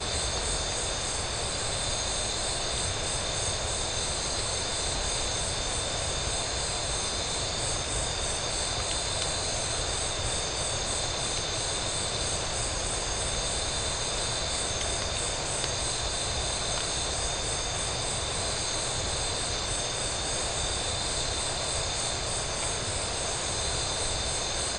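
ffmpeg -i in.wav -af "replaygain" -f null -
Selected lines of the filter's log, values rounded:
track_gain = +12.5 dB
track_peak = 0.154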